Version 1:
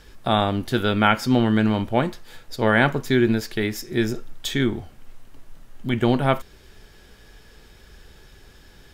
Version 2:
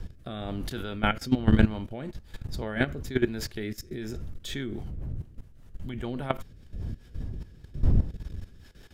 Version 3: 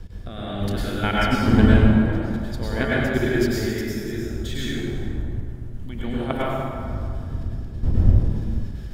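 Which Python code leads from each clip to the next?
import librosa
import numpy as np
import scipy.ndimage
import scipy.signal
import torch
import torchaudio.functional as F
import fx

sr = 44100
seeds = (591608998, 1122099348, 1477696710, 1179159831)

y1 = fx.dmg_wind(x, sr, seeds[0], corner_hz=85.0, level_db=-26.0)
y1 = fx.level_steps(y1, sr, step_db=16)
y1 = fx.rotary_switch(y1, sr, hz=1.1, then_hz=5.0, switch_at_s=3.99)
y2 = fx.rev_plate(y1, sr, seeds[1], rt60_s=2.3, hf_ratio=0.55, predelay_ms=85, drr_db=-7.0)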